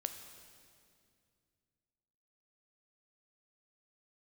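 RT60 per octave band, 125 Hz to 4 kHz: 3.2 s, 2.9 s, 2.5 s, 2.1 s, 2.1 s, 2.0 s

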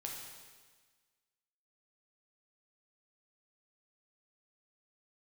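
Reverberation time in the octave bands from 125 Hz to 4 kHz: 1.5 s, 1.5 s, 1.4 s, 1.5 s, 1.5 s, 1.5 s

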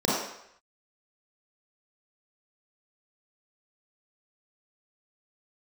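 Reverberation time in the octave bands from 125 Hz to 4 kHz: 0.55 s, 0.55 s, 0.70 s, 0.75 s, 0.80 s, 0.70 s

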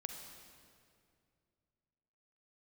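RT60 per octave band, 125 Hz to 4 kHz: 3.1 s, 2.7 s, 2.6 s, 2.2 s, 2.0 s, 1.7 s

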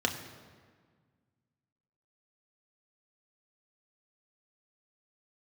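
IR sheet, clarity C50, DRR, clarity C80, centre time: 9.0 dB, 2.5 dB, 10.0 dB, 26 ms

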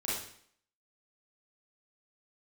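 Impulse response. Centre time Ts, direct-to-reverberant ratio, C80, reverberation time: 63 ms, -8.0 dB, 5.0 dB, 0.60 s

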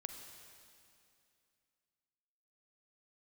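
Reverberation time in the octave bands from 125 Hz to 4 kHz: 2.8 s, 2.8 s, 2.6 s, 2.5 s, 2.5 s, 2.4 s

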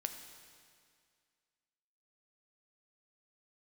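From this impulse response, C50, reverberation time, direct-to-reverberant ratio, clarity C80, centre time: 7.5 dB, 2.1 s, 6.0 dB, 8.5 dB, 32 ms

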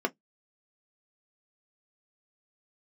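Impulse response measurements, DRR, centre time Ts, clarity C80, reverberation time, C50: 4.5 dB, 4 ms, 50.0 dB, 0.10 s, 32.0 dB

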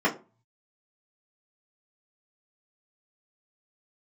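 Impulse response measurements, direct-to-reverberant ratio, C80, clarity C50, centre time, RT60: -7.0 dB, 20.0 dB, 14.5 dB, 14 ms, 0.30 s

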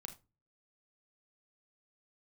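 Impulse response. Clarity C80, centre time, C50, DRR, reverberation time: 19.5 dB, 10 ms, 12.5 dB, 6.0 dB, no single decay rate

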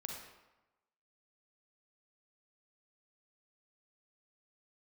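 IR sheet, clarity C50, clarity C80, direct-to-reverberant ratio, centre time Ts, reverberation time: 2.0 dB, 4.5 dB, 0.5 dB, 52 ms, 1.0 s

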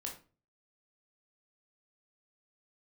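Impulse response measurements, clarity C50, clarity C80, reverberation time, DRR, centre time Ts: 8.0 dB, 14.0 dB, 0.35 s, -1.0 dB, 22 ms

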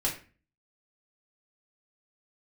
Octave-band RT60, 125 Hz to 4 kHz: 0.55 s, 0.50 s, 0.40 s, 0.35 s, 0.40 s, 0.30 s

